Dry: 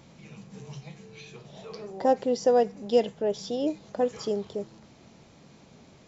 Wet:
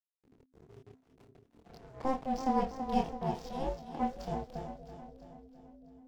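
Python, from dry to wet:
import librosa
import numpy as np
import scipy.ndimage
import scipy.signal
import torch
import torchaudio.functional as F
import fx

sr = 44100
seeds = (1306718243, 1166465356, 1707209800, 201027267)

p1 = fx.rev_gated(x, sr, seeds[0], gate_ms=180, shape='falling', drr_db=11.5)
p2 = fx.backlash(p1, sr, play_db=-32.5)
p3 = fx.doubler(p2, sr, ms=26.0, db=-3.5)
p4 = p3 + fx.echo_split(p3, sr, split_hz=330.0, low_ms=516, high_ms=330, feedback_pct=52, wet_db=-9.0, dry=0)
p5 = p4 * np.sin(2.0 * np.pi * 260.0 * np.arange(len(p4)) / sr)
y = p5 * 10.0 ** (-6.5 / 20.0)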